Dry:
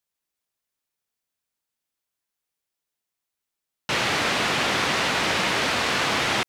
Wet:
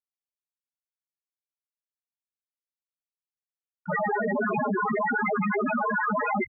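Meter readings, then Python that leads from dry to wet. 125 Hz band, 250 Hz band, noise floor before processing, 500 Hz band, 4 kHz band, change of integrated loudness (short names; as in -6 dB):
-2.0 dB, +3.0 dB, -85 dBFS, +1.0 dB, under -40 dB, -4.5 dB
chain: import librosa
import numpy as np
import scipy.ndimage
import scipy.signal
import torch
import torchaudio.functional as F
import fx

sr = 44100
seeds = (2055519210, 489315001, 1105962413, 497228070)

y = scipy.signal.sosfilt(scipy.signal.butter(4, 66.0, 'highpass', fs=sr, output='sos'), x)
y = fx.high_shelf(y, sr, hz=4300.0, db=-11.0)
y = y + 0.67 * np.pad(y, (int(4.8 * sr / 1000.0), 0))[:len(y)]
y = fx.quant_companded(y, sr, bits=4)
y = fx.spec_topn(y, sr, count=2)
y = fx.env_flatten(y, sr, amount_pct=70)
y = y * 10.0 ** (6.0 / 20.0)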